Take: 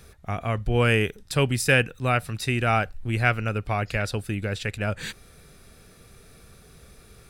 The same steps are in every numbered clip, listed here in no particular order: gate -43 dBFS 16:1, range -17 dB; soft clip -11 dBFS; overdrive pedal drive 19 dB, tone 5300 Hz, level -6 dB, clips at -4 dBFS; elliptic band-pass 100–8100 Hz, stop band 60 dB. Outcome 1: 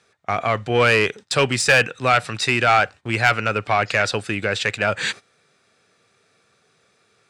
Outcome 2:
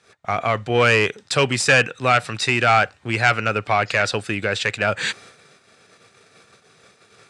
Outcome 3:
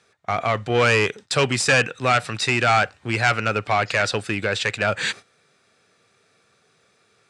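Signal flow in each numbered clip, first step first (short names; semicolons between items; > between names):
elliptic band-pass > gate > soft clip > overdrive pedal; soft clip > overdrive pedal > elliptic band-pass > gate; gate > overdrive pedal > soft clip > elliptic band-pass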